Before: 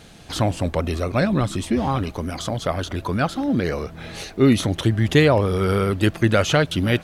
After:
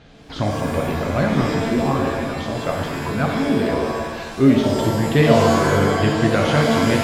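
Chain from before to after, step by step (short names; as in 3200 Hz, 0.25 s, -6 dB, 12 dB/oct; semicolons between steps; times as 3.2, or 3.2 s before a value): air absorption 180 m; shimmer reverb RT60 1.2 s, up +7 st, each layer -2 dB, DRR 1 dB; gain -2 dB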